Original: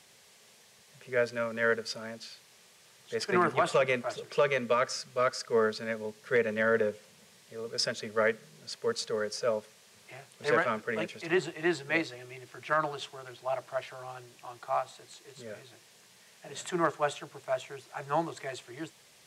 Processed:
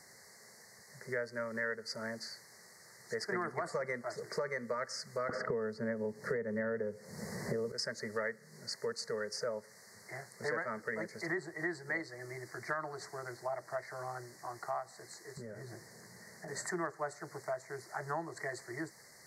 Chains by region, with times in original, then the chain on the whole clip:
0:05.29–0:07.72: tilt shelving filter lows +7 dB, about 880 Hz + multiband upward and downward compressor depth 100%
0:15.37–0:16.48: low-shelf EQ 500 Hz +11 dB + downward compressor 8 to 1, threshold −44 dBFS
whole clip: elliptic band-stop filter 2,000–4,400 Hz, stop band 40 dB; parametric band 1,900 Hz +6 dB 0.45 octaves; downward compressor 4 to 1, threshold −38 dBFS; level +2 dB

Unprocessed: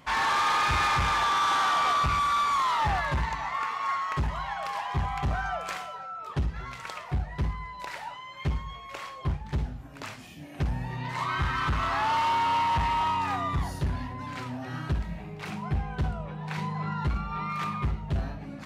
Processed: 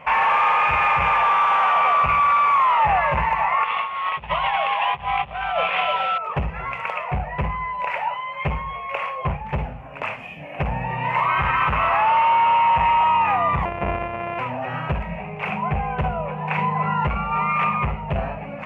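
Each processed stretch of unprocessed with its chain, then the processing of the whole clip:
0:03.64–0:06.18: linear delta modulator 32 kbit/s, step −38 dBFS + low-pass with resonance 3,500 Hz, resonance Q 6.4 + compressor whose output falls as the input rises −33 dBFS, ratio −0.5
0:13.65–0:14.39: samples sorted by size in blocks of 128 samples + low-pass filter 2,500 Hz
whole clip: drawn EQ curve 100 Hz 0 dB, 190 Hz +5 dB, 310 Hz −5 dB, 510 Hz +13 dB, 1,000 Hz +12 dB, 1,600 Hz +5 dB, 2,600 Hz +15 dB, 3,900 Hz −14 dB; brickwall limiter −13.5 dBFS; level +2 dB

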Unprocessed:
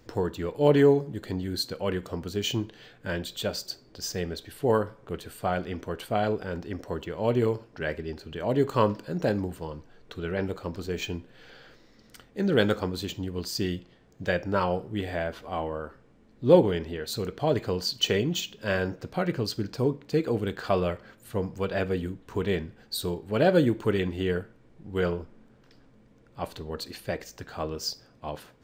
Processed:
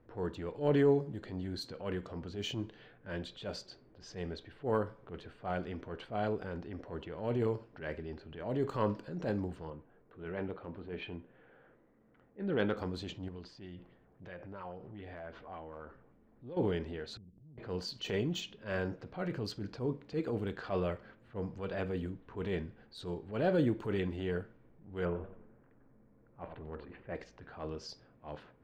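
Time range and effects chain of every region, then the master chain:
0:09.70–0:12.77: low-pass filter 3,500 Hz 24 dB per octave + low-shelf EQ 83 Hz −11 dB + one half of a high-frequency compander decoder only
0:13.28–0:16.57: downward compressor 5 to 1, threshold −36 dBFS + auto-filter bell 3.6 Hz 720–6,900 Hz +7 dB
0:17.17–0:17.58: inverse Chebyshev low-pass filter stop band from 1,400 Hz, stop band 80 dB + downward compressor 10 to 1, threshold −46 dBFS
0:25.05–0:27.15: low-pass filter 2,500 Hz 24 dB per octave + feedback echo with a swinging delay time 92 ms, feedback 45%, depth 145 cents, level −14 dB
whole clip: low-pass that shuts in the quiet parts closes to 1,600 Hz, open at −24.5 dBFS; high-shelf EQ 4,900 Hz −11.5 dB; transient designer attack −8 dB, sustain +2 dB; level −6.5 dB

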